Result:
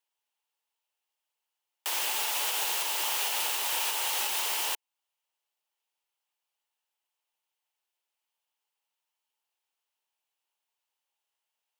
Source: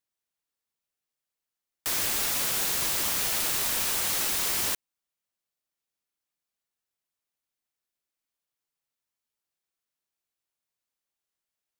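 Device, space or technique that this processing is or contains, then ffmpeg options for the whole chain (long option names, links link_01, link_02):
laptop speaker: -af "highpass=frequency=380:width=0.5412,highpass=frequency=380:width=1.3066,equalizer=frequency=880:width_type=o:width=0.39:gain=11.5,equalizer=frequency=2900:width_type=o:width=0.47:gain=8.5,alimiter=limit=-19.5dB:level=0:latency=1:release=267"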